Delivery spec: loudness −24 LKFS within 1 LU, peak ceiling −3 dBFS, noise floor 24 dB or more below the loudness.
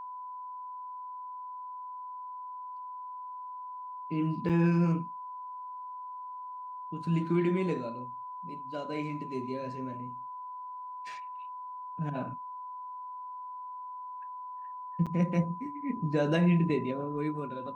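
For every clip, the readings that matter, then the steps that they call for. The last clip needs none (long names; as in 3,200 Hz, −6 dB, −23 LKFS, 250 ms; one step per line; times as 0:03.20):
number of dropouts 2; longest dropout 6.5 ms; interfering tone 1,000 Hz; level of the tone −39 dBFS; integrated loudness −34.5 LKFS; sample peak −16.0 dBFS; target loudness −24.0 LKFS
→ repair the gap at 0:04.49/0:15.06, 6.5 ms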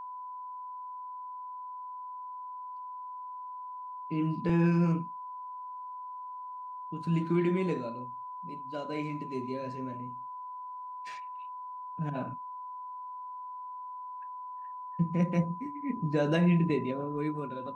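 number of dropouts 0; interfering tone 1,000 Hz; level of the tone −39 dBFS
→ notch filter 1,000 Hz, Q 30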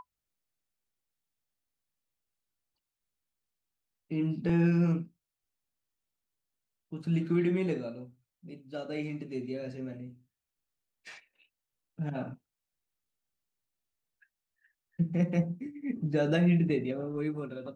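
interfering tone none found; integrated loudness −31.0 LKFS; sample peak −16.0 dBFS; target loudness −24.0 LKFS
→ level +7 dB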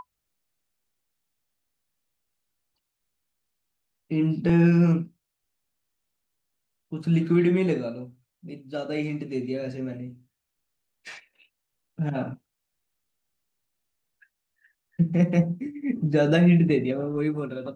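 integrated loudness −24.0 LKFS; sample peak −9.0 dBFS; background noise floor −82 dBFS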